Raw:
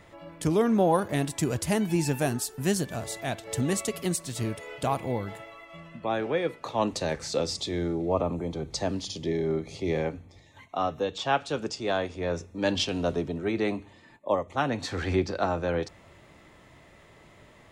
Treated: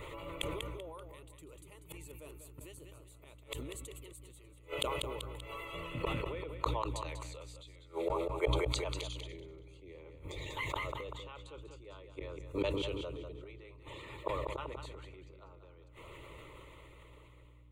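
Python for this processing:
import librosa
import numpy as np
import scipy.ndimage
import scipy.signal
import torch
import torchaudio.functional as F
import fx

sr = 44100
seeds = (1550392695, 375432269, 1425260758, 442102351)

y = fx.fade_out_tail(x, sr, length_s=5.6)
y = fx.highpass(y, sr, hz=720.0, slope=12, at=(6.97, 9.33))
y = fx.hpss(y, sr, part='harmonic', gain_db=-15)
y = fx.rider(y, sr, range_db=4, speed_s=2.0)
y = fx.gate_flip(y, sr, shuts_db=-34.0, range_db=-36)
y = fx.add_hum(y, sr, base_hz=60, snr_db=12)
y = fx.fixed_phaser(y, sr, hz=1100.0, stages=8)
y = fx.echo_feedback(y, sr, ms=193, feedback_pct=36, wet_db=-9.5)
y = fx.sustainer(y, sr, db_per_s=21.0)
y = F.gain(torch.from_numpy(y), 16.5).numpy()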